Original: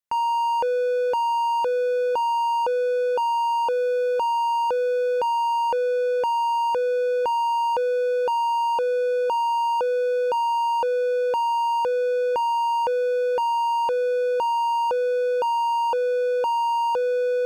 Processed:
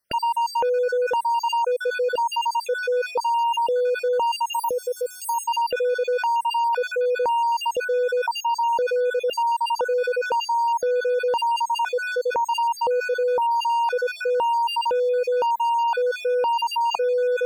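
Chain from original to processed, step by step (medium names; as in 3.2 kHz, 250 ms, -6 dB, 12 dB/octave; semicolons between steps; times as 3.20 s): random holes in the spectrogram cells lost 38%; 4.53–5.44 s: FFT filter 270 Hz 0 dB, 840 Hz -8 dB, 2.1 kHz -28 dB, 8.8 kHz +12 dB; in parallel at +0.5 dB: compressor with a negative ratio -35 dBFS, ratio -1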